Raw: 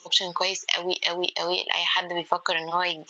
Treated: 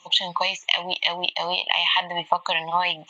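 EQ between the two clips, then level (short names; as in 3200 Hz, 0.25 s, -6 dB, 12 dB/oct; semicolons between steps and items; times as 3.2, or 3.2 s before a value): fixed phaser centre 1500 Hz, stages 6; +4.5 dB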